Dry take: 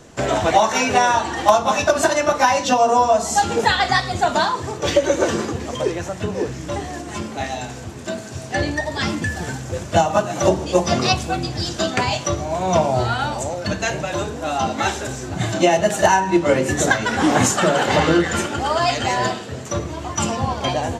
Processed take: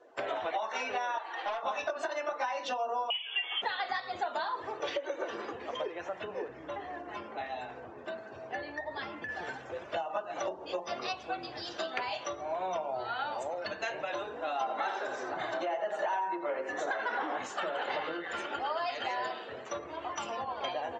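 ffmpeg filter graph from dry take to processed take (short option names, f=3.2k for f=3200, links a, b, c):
-filter_complex "[0:a]asettb=1/sr,asplit=3[a][b][c];[a]atrim=end=1.184[d];[b]atrim=start=1.18:end=1.63,asetpts=PTS-STARTPTS,afade=t=in:d=0.004:c=qsin,afade=t=out:st=0.446:d=0.004:c=qsin,highpass=490,aeval=exprs='(tanh(7.94*val(0)+0.7)-tanh(0.7))/7.94':c=same[e];[c]atrim=start=1.626[f];[d][e]acrossfade=d=0.004:c1=hsin:c2=qsin[g];[g][f]acrossfade=d=0.004:c1=qsin:c2=hsin,asettb=1/sr,asplit=3[h][i][j];[h]atrim=end=3.104[k];[i]atrim=start=3.1:end=3.62,asetpts=PTS-STARTPTS,afade=t=in:d=0.004:c=qsin,afade=t=out:st=0.516:d=0.004:c=qsin,highpass=f=240:p=1,highshelf=f=2.7k:g=9,lowpass=f=3.1k:t=q:w=0.5098,lowpass=f=3.1k:t=q:w=0.6013,lowpass=f=3.1k:t=q:w=0.9,lowpass=f=3.1k:t=q:w=2.563,afreqshift=-3600[l];[j]atrim=start=3.616[m];[k][l]acrossfade=d=0.004:c1=hsin:c2=qsin[n];[n][m]acrossfade=d=0.004:c1=qsin:c2=hsin,asettb=1/sr,asplit=3[o][p][q];[o]atrim=end=6.484[r];[p]atrim=start=6.48:end=9.29,asetpts=PTS-STARTPTS,afade=t=in:d=0.004:c=qsin,afade=t=out:st=2.806:d=0.004:c=qsin,acrossover=split=130|320|830[s][t][u][v];[s]acompressor=threshold=-36dB:ratio=3[w];[t]acompressor=threshold=-40dB:ratio=3[x];[u]acompressor=threshold=-39dB:ratio=3[y];[v]acompressor=threshold=-29dB:ratio=3[z];[w][x][y][z]amix=inputs=4:normalize=0,lowpass=7.8k,tiltshelf=f=970:g=4.5[aa];[q]atrim=start=9.286[ab];[r][aa]acrossfade=d=0.004:c1=hsin:c2=qsin[ac];[ac][ab]acrossfade=d=0.004:c1=qsin:c2=hsin,asettb=1/sr,asplit=3[ad][ae][af];[ad]atrim=end=14.614[ag];[ae]atrim=start=14.61:end=17.36,asetpts=PTS-STARTPTS,afade=t=in:d=0.004:c=qsin,afade=t=out:st=2.746:d=0.004:c=qsin,equalizer=f=2.6k:w=1.1:g=-8,asplit=2[ah][ai];[ai]highpass=f=720:p=1,volume=16dB,asoftclip=type=tanh:threshold=-2.5dB[aj];[ah][aj]amix=inputs=2:normalize=0,lowpass=f=2.8k:p=1,volume=-6dB,aecho=1:1:87:0.376,atrim=end_sample=121275[ak];[af]atrim=start=17.356[al];[ag][ak]acrossfade=d=0.004:c1=hsin:c2=qsin[am];[am][al]acrossfade=d=0.004:c1=qsin:c2=hsin,acompressor=threshold=-23dB:ratio=10,acrossover=split=380 4600:gain=0.0794 1 0.126[an][ao][ap];[an][ao][ap]amix=inputs=3:normalize=0,afftdn=nr=16:nf=-47,volume=-6dB"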